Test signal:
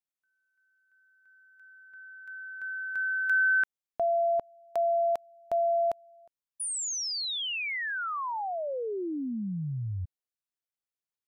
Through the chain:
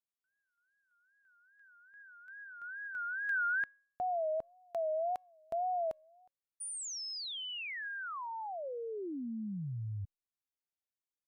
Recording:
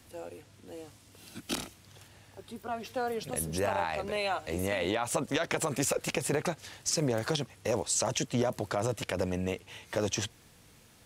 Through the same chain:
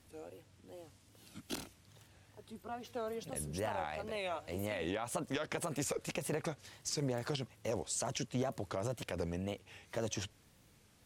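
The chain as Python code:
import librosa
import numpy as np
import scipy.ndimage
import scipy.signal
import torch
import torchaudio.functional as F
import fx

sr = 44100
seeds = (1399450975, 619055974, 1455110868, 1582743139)

y = fx.low_shelf(x, sr, hz=360.0, db=3.0)
y = fx.wow_flutter(y, sr, seeds[0], rate_hz=2.1, depth_cents=140.0)
y = fx.comb_fb(y, sr, f0_hz=550.0, decay_s=0.6, harmonics='all', damping=0.1, mix_pct=30)
y = y * 10.0 ** (-5.5 / 20.0)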